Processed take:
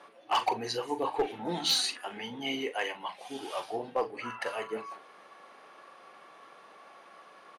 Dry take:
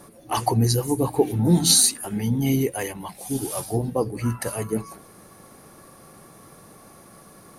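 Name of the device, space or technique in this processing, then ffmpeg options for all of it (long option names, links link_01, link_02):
megaphone: -filter_complex "[0:a]highpass=680,lowpass=2900,equalizer=frequency=3000:width_type=o:width=0.54:gain=6.5,asoftclip=type=hard:threshold=-20.5dB,asplit=2[link_01][link_02];[link_02]adelay=41,volume=-11dB[link_03];[link_01][link_03]amix=inputs=2:normalize=0"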